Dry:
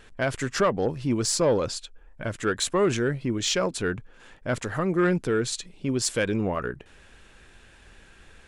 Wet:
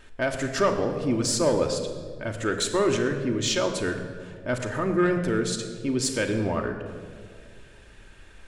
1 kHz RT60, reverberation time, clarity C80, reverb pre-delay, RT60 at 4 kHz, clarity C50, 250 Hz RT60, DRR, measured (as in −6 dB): 1.7 s, 2.1 s, 8.5 dB, 3 ms, 1.1 s, 7.5 dB, 2.4 s, 3.5 dB